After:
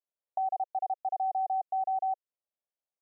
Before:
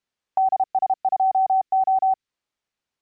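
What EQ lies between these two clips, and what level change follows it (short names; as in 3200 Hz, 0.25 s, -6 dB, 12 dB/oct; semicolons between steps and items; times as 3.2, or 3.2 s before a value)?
band-pass 600 Hz, Q 2.6; -6.5 dB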